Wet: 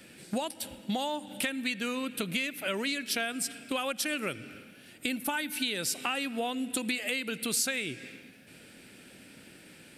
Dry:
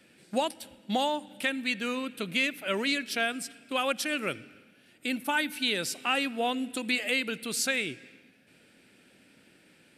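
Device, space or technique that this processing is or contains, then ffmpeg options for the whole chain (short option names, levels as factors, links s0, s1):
ASMR close-microphone chain: -af "lowshelf=f=130:g=5.5,acompressor=threshold=0.0158:ratio=6,highshelf=f=6700:g=7,volume=2"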